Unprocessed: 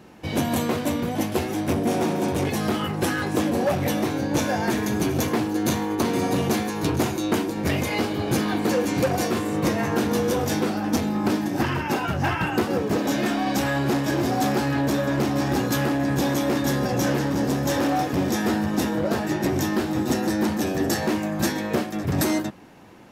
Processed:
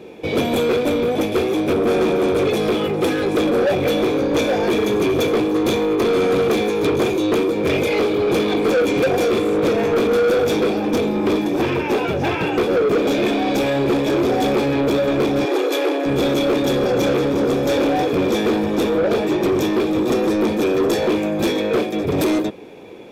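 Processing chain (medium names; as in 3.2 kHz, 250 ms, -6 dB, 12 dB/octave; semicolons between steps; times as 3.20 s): small resonant body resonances 440/2400/3400 Hz, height 18 dB, ringing for 20 ms; saturation -13.5 dBFS, distortion -10 dB; 15.45–16.06 s: brick-wall FIR band-pass 280–14000 Hz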